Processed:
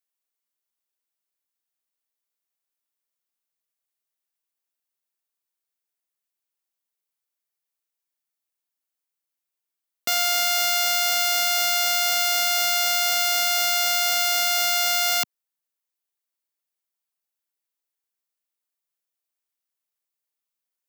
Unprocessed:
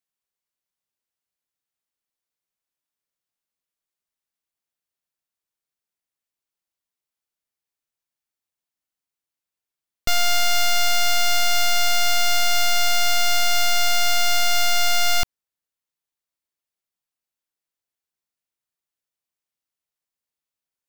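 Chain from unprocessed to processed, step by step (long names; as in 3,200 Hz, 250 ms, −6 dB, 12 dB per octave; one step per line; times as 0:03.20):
Bessel high-pass filter 270 Hz, order 4
high-shelf EQ 10,000 Hz +7.5 dB
level −1.5 dB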